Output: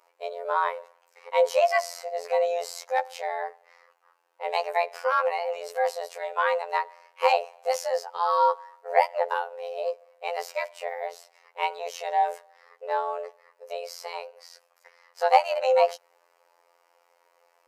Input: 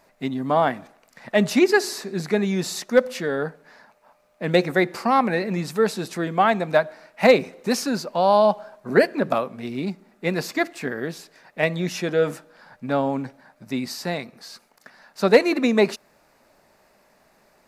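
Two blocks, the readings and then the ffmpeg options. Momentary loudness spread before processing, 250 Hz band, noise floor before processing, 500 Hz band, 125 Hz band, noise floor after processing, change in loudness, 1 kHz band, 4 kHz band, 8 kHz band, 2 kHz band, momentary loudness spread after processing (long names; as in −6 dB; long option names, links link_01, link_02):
14 LU, below −40 dB, −61 dBFS, −5.0 dB, below −40 dB, −67 dBFS, −5.0 dB, +0.5 dB, −7.0 dB, −7.5 dB, −6.5 dB, 15 LU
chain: -af "afreqshift=300,lowshelf=frequency=350:width_type=q:width=3:gain=-12.5,afftfilt=real='hypot(re,im)*cos(PI*b)':imag='0':win_size=2048:overlap=0.75,volume=-5dB"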